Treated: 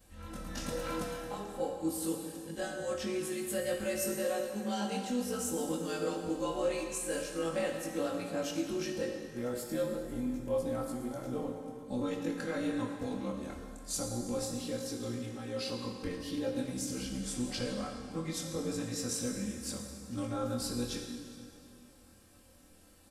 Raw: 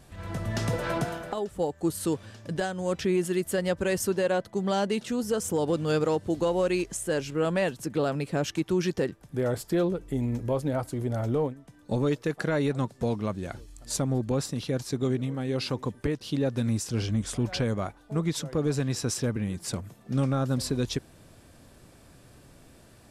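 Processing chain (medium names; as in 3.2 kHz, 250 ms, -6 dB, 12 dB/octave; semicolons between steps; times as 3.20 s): short-time spectra conjugated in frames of 49 ms; treble shelf 5.4 kHz +7.5 dB; comb 3.8 ms, depth 67%; plate-style reverb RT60 2.4 s, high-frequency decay 0.85×, DRR 2 dB; trim -8 dB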